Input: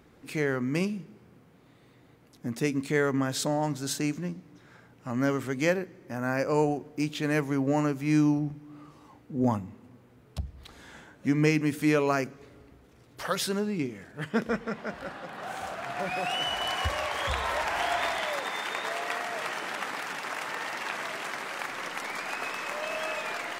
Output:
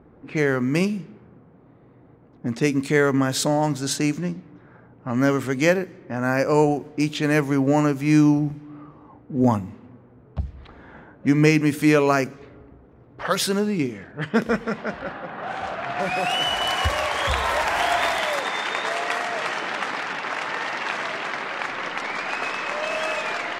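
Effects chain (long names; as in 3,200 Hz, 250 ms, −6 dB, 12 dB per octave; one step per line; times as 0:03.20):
low-pass that shuts in the quiet parts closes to 980 Hz, open at −26.5 dBFS
level +7 dB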